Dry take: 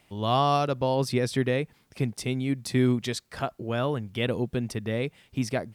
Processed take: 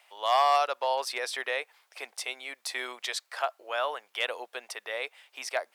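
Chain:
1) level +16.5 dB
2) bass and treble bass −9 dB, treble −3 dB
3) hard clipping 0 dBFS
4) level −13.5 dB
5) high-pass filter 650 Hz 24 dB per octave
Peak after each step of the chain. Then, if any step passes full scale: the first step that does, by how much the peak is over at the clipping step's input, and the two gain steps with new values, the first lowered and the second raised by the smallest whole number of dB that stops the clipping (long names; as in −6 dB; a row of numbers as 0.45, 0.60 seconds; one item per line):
+6.0, +5.5, 0.0, −13.5, −13.0 dBFS
step 1, 5.5 dB
step 1 +10.5 dB, step 4 −7.5 dB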